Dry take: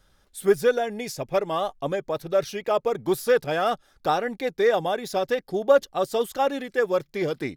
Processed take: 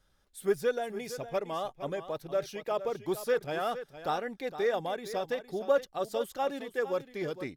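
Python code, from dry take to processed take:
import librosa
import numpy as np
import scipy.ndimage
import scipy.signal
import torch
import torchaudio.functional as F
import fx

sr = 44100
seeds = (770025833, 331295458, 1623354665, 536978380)

y = x + 10.0 ** (-12.5 / 20.0) * np.pad(x, (int(461 * sr / 1000.0), 0))[:len(x)]
y = y * librosa.db_to_amplitude(-8.5)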